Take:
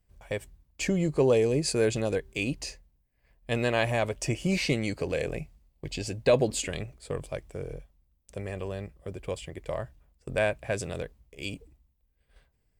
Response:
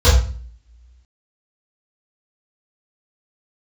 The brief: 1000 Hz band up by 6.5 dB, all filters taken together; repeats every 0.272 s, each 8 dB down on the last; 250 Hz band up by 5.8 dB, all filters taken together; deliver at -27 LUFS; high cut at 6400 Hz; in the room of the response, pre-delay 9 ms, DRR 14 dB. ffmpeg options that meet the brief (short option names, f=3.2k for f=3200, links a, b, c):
-filter_complex "[0:a]lowpass=6.4k,equalizer=f=250:t=o:g=7.5,equalizer=f=1k:t=o:g=8.5,aecho=1:1:272|544|816|1088|1360:0.398|0.159|0.0637|0.0255|0.0102,asplit=2[a][b];[1:a]atrim=start_sample=2205,adelay=9[c];[b][c]afir=irnorm=-1:irlink=0,volume=-37.5dB[d];[a][d]amix=inputs=2:normalize=0,volume=-2dB"